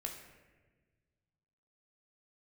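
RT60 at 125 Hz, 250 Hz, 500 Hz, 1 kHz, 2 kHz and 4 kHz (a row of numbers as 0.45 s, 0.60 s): 2.5 s, 1.9 s, 1.6 s, 1.1 s, 1.3 s, 0.85 s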